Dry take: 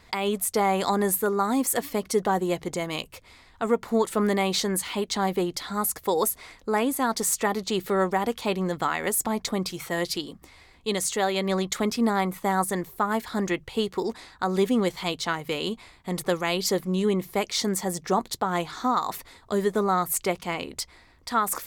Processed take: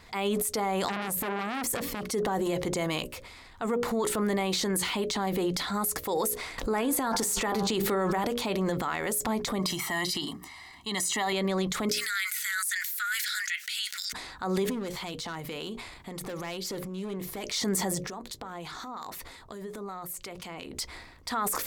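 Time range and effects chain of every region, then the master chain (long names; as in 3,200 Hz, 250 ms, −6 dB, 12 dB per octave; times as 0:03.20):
0:00.88–0:02.03: low-shelf EQ 380 Hz +7.5 dB + saturating transformer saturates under 2,200 Hz
0:06.58–0:08.25: hum removal 99.54 Hz, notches 17 + envelope flattener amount 70%
0:09.59–0:11.33: high-pass filter 320 Hz 6 dB per octave + comb filter 1 ms, depth 91%
0:11.89–0:14.13: Chebyshev high-pass with heavy ripple 1,400 Hz, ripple 3 dB + spectral tilt +1.5 dB per octave + envelope flattener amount 50%
0:14.65–0:17.44: hard clipping −20.5 dBFS + downward compressor, threshold −35 dBFS
0:18.04–0:20.79: downward compressor 10 to 1, threshold −35 dBFS + two-band tremolo in antiphase 5.6 Hz, depth 50%, crossover 1,200 Hz
whole clip: mains-hum notches 60/120/180/240/300/360/420/480/540/600 Hz; brickwall limiter −22 dBFS; transient designer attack −2 dB, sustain +7 dB; level +2 dB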